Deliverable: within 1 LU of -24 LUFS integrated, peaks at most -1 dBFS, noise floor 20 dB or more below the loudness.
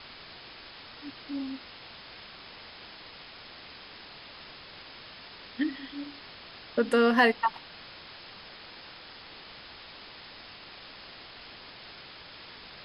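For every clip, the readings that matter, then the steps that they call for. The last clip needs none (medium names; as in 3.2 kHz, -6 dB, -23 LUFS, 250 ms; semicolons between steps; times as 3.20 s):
noise floor -48 dBFS; noise floor target -49 dBFS; loudness -29.0 LUFS; peak level -9.0 dBFS; loudness target -24.0 LUFS
-> noise reduction 6 dB, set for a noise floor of -48 dBFS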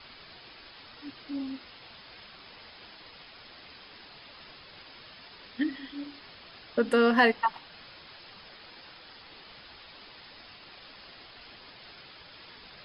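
noise floor -51 dBFS; loudness -28.0 LUFS; peak level -9.0 dBFS; loudness target -24.0 LUFS
-> trim +4 dB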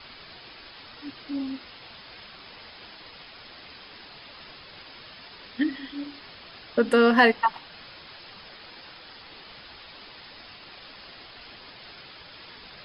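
loudness -24.0 LUFS; peak level -5.0 dBFS; noise floor -47 dBFS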